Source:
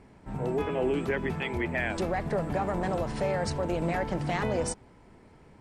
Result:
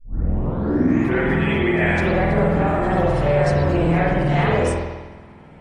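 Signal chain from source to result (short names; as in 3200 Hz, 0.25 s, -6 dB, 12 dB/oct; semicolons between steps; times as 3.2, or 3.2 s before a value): tape start at the beginning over 1.20 s; tape echo 66 ms, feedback 53%, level -12.5 dB, low-pass 2800 Hz; spring tank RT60 1.2 s, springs 48 ms, chirp 75 ms, DRR -9.5 dB; AAC 32 kbps 44100 Hz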